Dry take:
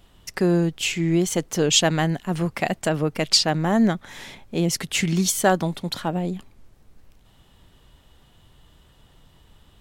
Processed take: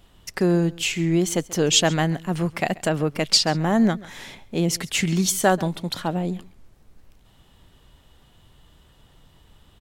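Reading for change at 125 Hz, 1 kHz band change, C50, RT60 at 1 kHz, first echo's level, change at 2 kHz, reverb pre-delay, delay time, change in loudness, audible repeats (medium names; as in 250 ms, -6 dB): 0.0 dB, 0.0 dB, no reverb, no reverb, -21.0 dB, 0.0 dB, no reverb, 135 ms, 0.0 dB, 1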